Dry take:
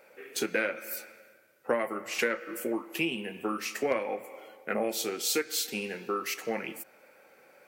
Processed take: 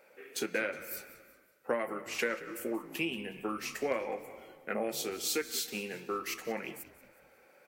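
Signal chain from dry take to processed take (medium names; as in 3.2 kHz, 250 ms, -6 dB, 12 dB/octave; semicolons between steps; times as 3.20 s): frequency-shifting echo 183 ms, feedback 43%, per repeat -69 Hz, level -17 dB; trim -4 dB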